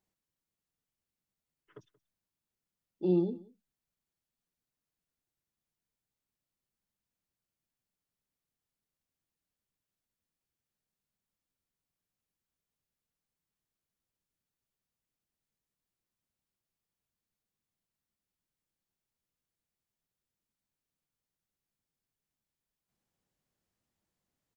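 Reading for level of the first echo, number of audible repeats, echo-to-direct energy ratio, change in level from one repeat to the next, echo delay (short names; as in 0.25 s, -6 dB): -22.5 dB, 1, -22.5 dB, no steady repeat, 0.18 s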